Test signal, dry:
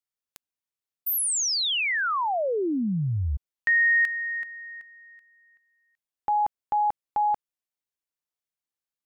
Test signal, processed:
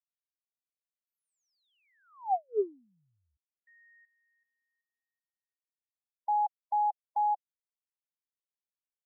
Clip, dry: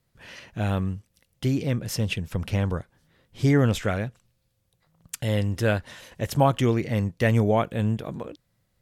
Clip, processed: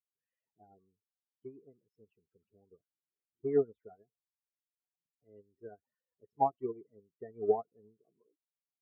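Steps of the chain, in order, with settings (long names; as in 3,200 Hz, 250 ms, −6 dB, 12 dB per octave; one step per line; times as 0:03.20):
spectral peaks only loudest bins 16
pair of resonant band-passes 560 Hz, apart 0.86 octaves
expander for the loud parts 2.5 to 1, over −44 dBFS
level +2.5 dB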